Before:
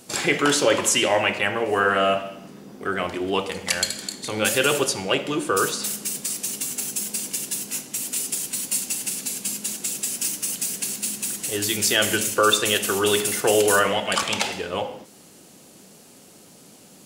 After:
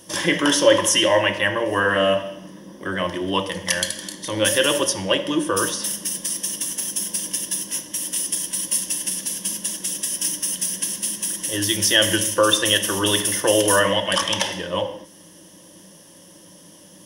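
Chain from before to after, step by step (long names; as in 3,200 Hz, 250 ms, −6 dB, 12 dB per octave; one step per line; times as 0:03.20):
EQ curve with evenly spaced ripples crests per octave 1.2, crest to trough 13 dB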